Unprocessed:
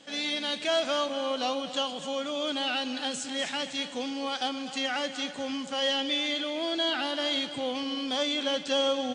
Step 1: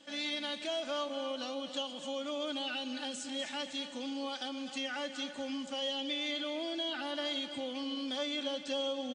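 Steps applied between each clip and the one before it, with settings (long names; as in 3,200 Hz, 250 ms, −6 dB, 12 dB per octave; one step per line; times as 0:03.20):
downward compressor 2 to 1, threshold −31 dBFS, peak gain reduction 5.5 dB
comb filter 3.4 ms, depth 60%
level −7 dB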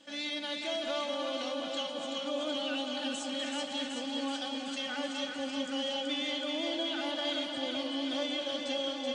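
delay that swaps between a low-pass and a high-pass 189 ms, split 1,100 Hz, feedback 85%, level −3 dB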